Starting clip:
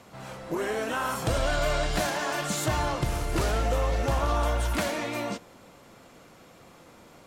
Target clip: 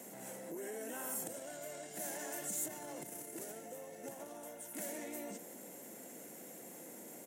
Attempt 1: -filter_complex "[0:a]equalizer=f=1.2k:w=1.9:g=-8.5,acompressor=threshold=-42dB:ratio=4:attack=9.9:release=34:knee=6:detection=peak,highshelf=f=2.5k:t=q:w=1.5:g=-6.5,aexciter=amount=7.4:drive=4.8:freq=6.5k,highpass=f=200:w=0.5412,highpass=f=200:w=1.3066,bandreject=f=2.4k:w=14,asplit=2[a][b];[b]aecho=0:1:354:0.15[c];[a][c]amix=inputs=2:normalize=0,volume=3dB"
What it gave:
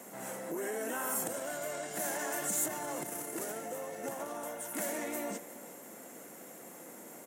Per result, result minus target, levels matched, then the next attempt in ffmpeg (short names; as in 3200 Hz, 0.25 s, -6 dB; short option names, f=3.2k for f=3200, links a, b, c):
echo-to-direct +11.5 dB; compressor: peak gain reduction -6.5 dB; 1000 Hz band +2.5 dB
-filter_complex "[0:a]equalizer=f=1.2k:w=1.9:g=-8.5,acompressor=threshold=-42dB:ratio=4:attack=9.9:release=34:knee=6:detection=peak,highshelf=f=2.5k:t=q:w=1.5:g=-6.5,aexciter=amount=7.4:drive=4.8:freq=6.5k,highpass=f=200:w=0.5412,highpass=f=200:w=1.3066,bandreject=f=2.4k:w=14,asplit=2[a][b];[b]aecho=0:1:354:0.0398[c];[a][c]amix=inputs=2:normalize=0,volume=3dB"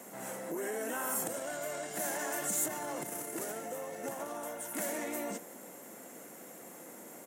compressor: peak gain reduction -6.5 dB; 1000 Hz band +2.5 dB
-filter_complex "[0:a]equalizer=f=1.2k:w=1.9:g=-8.5,acompressor=threshold=-51dB:ratio=4:attack=9.9:release=34:knee=6:detection=peak,highshelf=f=2.5k:t=q:w=1.5:g=-6.5,aexciter=amount=7.4:drive=4.8:freq=6.5k,highpass=f=200:w=0.5412,highpass=f=200:w=1.3066,bandreject=f=2.4k:w=14,asplit=2[a][b];[b]aecho=0:1:354:0.0398[c];[a][c]amix=inputs=2:normalize=0,volume=3dB"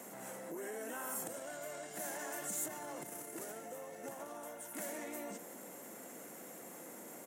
1000 Hz band +3.5 dB
-filter_complex "[0:a]equalizer=f=1.2k:w=1.9:g=-19,acompressor=threshold=-51dB:ratio=4:attack=9.9:release=34:knee=6:detection=peak,highshelf=f=2.5k:t=q:w=1.5:g=-6.5,aexciter=amount=7.4:drive=4.8:freq=6.5k,highpass=f=200:w=0.5412,highpass=f=200:w=1.3066,bandreject=f=2.4k:w=14,asplit=2[a][b];[b]aecho=0:1:354:0.0398[c];[a][c]amix=inputs=2:normalize=0,volume=3dB"